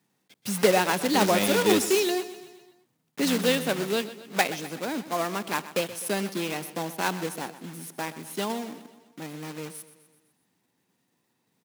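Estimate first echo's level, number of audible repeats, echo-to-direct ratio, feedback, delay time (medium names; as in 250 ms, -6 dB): -15.0 dB, 4, -13.5 dB, 55%, 126 ms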